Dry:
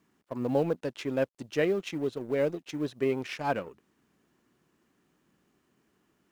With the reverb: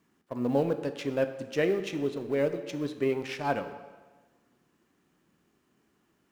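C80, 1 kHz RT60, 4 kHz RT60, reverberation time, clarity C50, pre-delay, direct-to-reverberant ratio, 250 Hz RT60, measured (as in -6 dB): 12.0 dB, 1.4 s, 1.1 s, 1.3 s, 10.5 dB, 16 ms, 9.0 dB, 1.3 s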